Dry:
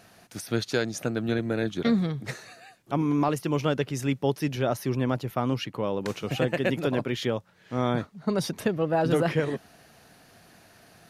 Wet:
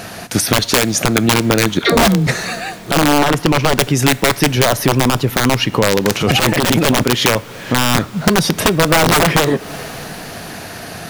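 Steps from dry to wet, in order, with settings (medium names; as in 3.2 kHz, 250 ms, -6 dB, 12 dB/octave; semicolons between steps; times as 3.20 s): 1.79–2.27 s: phase dispersion lows, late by 141 ms, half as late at 490 Hz; integer overflow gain 18.5 dB; 3.18–3.78 s: treble shelf 4.6 kHz -10.5 dB; 6.15–7.03 s: transient shaper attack -6 dB, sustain +11 dB; two-slope reverb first 0.46 s, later 4.9 s, from -18 dB, DRR 18 dB; compression 6:1, threshold -35 dBFS, peak gain reduction 13 dB; loudness maximiser +25.5 dB; trim -1 dB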